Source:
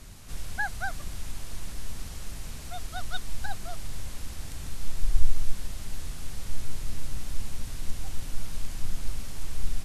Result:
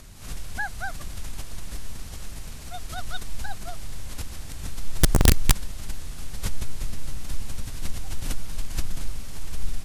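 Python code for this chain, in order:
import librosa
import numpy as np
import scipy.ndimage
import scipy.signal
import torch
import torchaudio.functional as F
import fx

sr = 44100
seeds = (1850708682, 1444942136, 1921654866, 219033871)

y = (np.mod(10.0 ** (10.5 / 20.0) * x + 1.0, 2.0) - 1.0) / 10.0 ** (10.5 / 20.0)
y = fx.pre_swell(y, sr, db_per_s=110.0)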